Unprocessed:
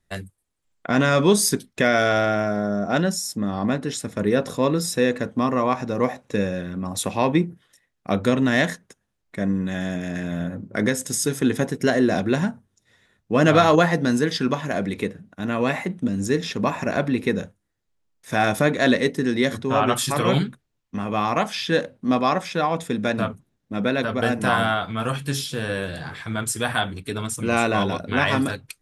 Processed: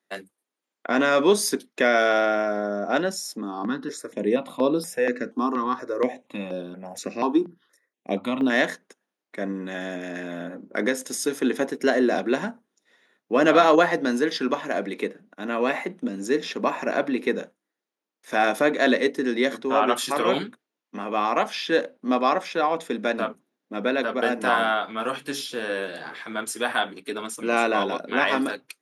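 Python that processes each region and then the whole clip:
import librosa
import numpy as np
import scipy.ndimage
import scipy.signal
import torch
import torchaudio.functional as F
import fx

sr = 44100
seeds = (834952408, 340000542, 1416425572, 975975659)

y = fx.chain(x, sr, fx.low_shelf(hz=150.0, db=9.0),
    fx.phaser_held(hz=4.2, low_hz=560.0, high_hz=6700.0), at=(3.41, 8.5))
y = scipy.signal.sosfilt(scipy.signal.butter(4, 260.0, 'highpass', fs=sr, output='sos'), y)
y = fx.high_shelf(y, sr, hz=4600.0, db=-6.0)
y = fx.notch(y, sr, hz=7800.0, q=8.6)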